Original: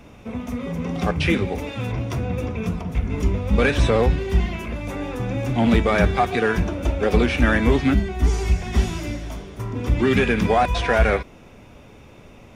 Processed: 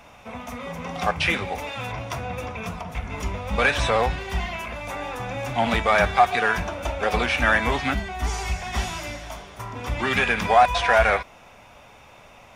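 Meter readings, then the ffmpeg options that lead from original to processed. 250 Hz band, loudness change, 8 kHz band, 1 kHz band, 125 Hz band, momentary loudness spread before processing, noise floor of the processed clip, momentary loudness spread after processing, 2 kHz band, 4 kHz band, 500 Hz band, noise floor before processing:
-10.0 dB, -2.0 dB, +2.0 dB, +4.0 dB, -9.0 dB, 11 LU, -49 dBFS, 16 LU, +2.5 dB, +2.0 dB, -3.0 dB, -46 dBFS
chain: -af "lowshelf=f=520:t=q:w=1.5:g=-10.5,volume=1.26"

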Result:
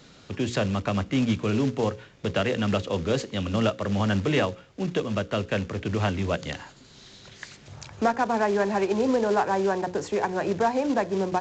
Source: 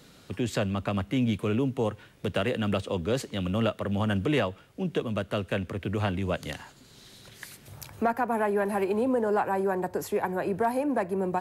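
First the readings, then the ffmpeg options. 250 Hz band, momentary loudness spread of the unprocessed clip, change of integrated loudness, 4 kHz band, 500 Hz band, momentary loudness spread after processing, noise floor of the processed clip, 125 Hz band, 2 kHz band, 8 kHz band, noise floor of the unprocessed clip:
+2.5 dB, 8 LU, +2.5 dB, +4.0 dB, +2.5 dB, 9 LU, -52 dBFS, +2.5 dB, +3.0 dB, +3.5 dB, -54 dBFS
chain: -af "bandreject=f=60:t=h:w=6,bandreject=f=120:t=h:w=6,bandreject=f=180:t=h:w=6,bandreject=f=240:t=h:w=6,bandreject=f=300:t=h:w=6,bandreject=f=360:t=h:w=6,bandreject=f=420:t=h:w=6,bandreject=f=480:t=h:w=6,bandreject=f=540:t=h:w=6,acrusher=bits=4:mode=log:mix=0:aa=0.000001,aresample=16000,aresample=44100,volume=1.41"

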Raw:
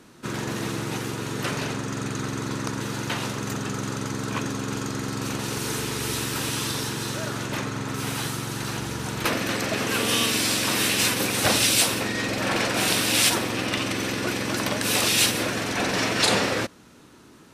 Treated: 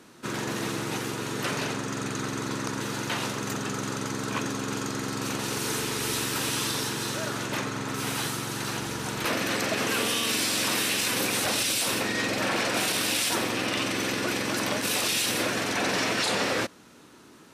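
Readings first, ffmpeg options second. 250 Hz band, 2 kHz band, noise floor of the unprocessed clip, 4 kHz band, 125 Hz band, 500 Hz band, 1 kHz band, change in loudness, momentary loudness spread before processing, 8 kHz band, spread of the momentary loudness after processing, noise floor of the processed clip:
-3.0 dB, -2.0 dB, -50 dBFS, -3.0 dB, -5.5 dB, -2.0 dB, -1.5 dB, -3.0 dB, 10 LU, -3.0 dB, 7 LU, -51 dBFS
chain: -af "lowshelf=f=120:g=-10.5,alimiter=limit=0.141:level=0:latency=1:release=21"

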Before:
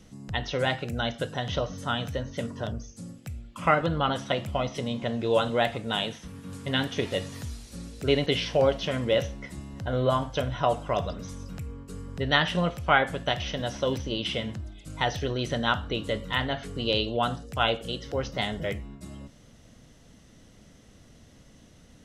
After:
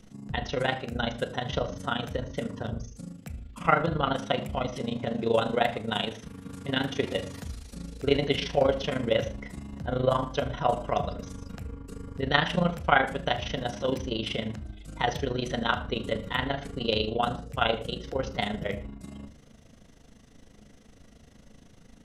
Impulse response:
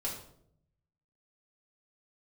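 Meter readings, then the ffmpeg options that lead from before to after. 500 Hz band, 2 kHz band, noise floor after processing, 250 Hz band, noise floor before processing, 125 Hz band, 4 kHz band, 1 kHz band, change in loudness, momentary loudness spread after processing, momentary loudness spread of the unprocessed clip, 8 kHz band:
-0.5 dB, -1.0 dB, -55 dBFS, 0.0 dB, -54 dBFS, -2.0 dB, -2.5 dB, 0.0 dB, -1.0 dB, 16 LU, 16 LU, -2.5 dB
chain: -filter_complex "[0:a]tremolo=f=26:d=0.824,asplit=2[s0][s1];[1:a]atrim=start_sample=2205,atrim=end_sample=6615,lowpass=3200[s2];[s1][s2]afir=irnorm=-1:irlink=0,volume=0.376[s3];[s0][s3]amix=inputs=2:normalize=0,volume=1.12"

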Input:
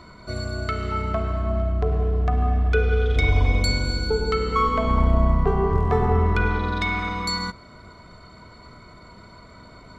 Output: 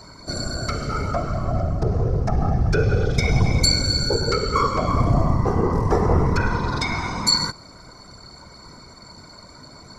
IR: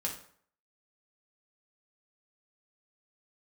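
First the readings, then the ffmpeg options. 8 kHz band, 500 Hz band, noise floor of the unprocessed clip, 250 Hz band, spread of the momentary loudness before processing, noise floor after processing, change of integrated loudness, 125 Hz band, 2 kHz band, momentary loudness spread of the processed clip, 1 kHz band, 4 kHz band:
no reading, +0.5 dB, -47 dBFS, +3.0 dB, 7 LU, -45 dBFS, +1.5 dB, +2.0 dB, -1.5 dB, 8 LU, +0.5 dB, +8.5 dB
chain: -af "highshelf=f=4100:t=q:w=3:g=8.5,afftfilt=real='hypot(re,im)*cos(2*PI*random(0))':imag='hypot(re,im)*sin(2*PI*random(1))':win_size=512:overlap=0.75,volume=2.24"

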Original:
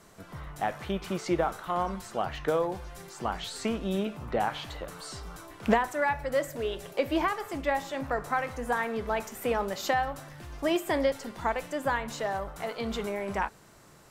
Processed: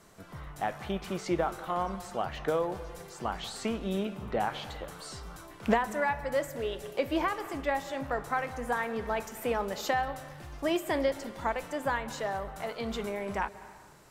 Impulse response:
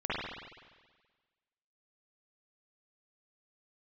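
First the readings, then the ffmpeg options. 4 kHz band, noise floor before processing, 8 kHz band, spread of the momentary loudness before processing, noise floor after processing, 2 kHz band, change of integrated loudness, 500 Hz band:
-2.0 dB, -55 dBFS, -2.0 dB, 11 LU, -51 dBFS, -2.0 dB, -2.0 dB, -2.0 dB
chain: -filter_complex "[0:a]asplit=2[s0][s1];[1:a]atrim=start_sample=2205,adelay=136[s2];[s1][s2]afir=irnorm=-1:irlink=0,volume=0.0631[s3];[s0][s3]amix=inputs=2:normalize=0,volume=0.794"

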